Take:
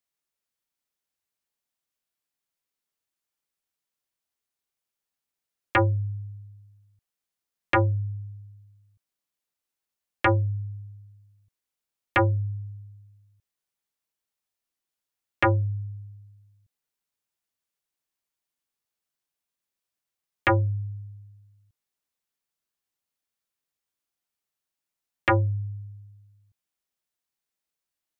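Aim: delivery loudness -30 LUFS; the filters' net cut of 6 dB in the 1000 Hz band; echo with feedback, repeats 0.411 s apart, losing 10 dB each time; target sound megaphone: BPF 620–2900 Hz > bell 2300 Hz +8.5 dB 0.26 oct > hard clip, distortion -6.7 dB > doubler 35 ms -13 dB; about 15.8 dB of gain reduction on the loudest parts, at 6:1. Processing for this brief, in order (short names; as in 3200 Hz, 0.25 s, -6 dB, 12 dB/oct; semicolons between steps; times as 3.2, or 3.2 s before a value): bell 1000 Hz -7 dB; compressor 6:1, threshold -37 dBFS; BPF 620–2900 Hz; bell 2300 Hz +8.5 dB 0.26 oct; feedback echo 0.411 s, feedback 32%, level -10 dB; hard clip -32.5 dBFS; doubler 35 ms -13 dB; gain +17.5 dB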